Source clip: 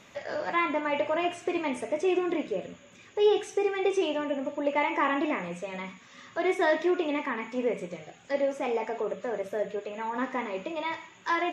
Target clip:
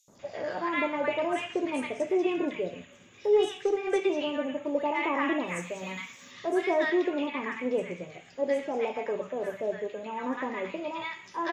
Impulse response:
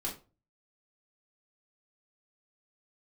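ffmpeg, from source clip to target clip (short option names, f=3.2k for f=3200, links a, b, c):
-filter_complex "[0:a]asplit=3[a][b][c];[a]afade=t=out:st=5.47:d=0.02[d];[b]aemphasis=mode=production:type=75kf,afade=t=in:st=5.47:d=0.02,afade=t=out:st=6.3:d=0.02[e];[c]afade=t=in:st=6.3:d=0.02[f];[d][e][f]amix=inputs=3:normalize=0,acrossover=split=1100|5500[g][h][i];[g]adelay=80[j];[h]adelay=190[k];[j][k][i]amix=inputs=3:normalize=0,asettb=1/sr,asplit=3[l][m][n];[l]atrim=end=3.334[o];[m]atrim=start=3.33:end=4.04,asetpts=PTS-STARTPTS,afade=t=in:d=0.004:c=qsin,afade=t=out:st=0.706:d=0.004:c=qsin,aeval=exprs='0.2*(cos(1*acos(clip(val(0)/0.2,-1,1)))-cos(1*PI/2))+0.00562*(cos(7*acos(clip(val(0)/0.2,-1,1)))-cos(7*PI/2))':c=same[p];[n]atrim=start=4.036[q];[o][p]acrossfade=d=0.004:c1=hsin:c2=qsin[r];[r][q]acrossfade=d=0.004:c1=qsin:c2=hsin"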